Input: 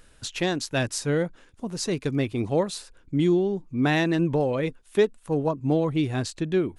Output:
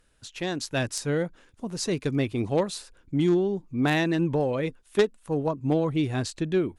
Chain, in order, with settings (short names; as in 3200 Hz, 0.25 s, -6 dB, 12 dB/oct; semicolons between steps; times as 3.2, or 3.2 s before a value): AGC gain up to 11 dB; added harmonics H 2 -35 dB, 3 -12 dB, 5 -18 dB, 7 -31 dB, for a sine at -2 dBFS; gain -7 dB